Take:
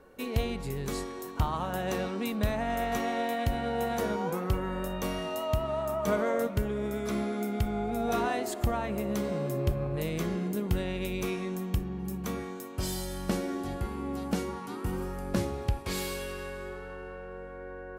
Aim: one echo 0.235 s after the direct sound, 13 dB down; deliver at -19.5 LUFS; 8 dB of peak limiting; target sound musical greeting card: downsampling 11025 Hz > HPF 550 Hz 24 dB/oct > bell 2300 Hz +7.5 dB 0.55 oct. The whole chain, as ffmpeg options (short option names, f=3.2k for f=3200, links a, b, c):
-af "alimiter=limit=-24dB:level=0:latency=1,aecho=1:1:235:0.224,aresample=11025,aresample=44100,highpass=f=550:w=0.5412,highpass=f=550:w=1.3066,equalizer=f=2.3k:t=o:w=0.55:g=7.5,volume=18dB"